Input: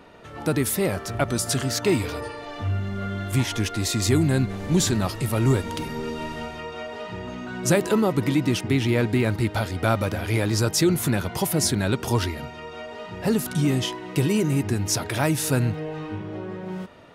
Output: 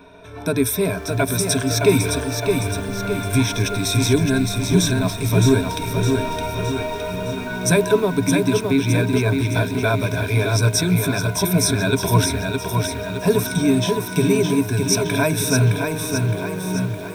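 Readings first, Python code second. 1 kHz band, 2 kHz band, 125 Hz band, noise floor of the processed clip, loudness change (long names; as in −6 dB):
+4.5 dB, +6.0 dB, +4.5 dB, −30 dBFS, +4.5 dB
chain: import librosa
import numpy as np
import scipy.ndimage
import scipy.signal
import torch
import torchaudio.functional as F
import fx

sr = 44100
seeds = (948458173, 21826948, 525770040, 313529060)

y = fx.ripple_eq(x, sr, per_octave=1.6, db=16)
y = fx.rider(y, sr, range_db=4, speed_s=2.0)
y = fx.echo_crushed(y, sr, ms=614, feedback_pct=55, bits=7, wet_db=-4.5)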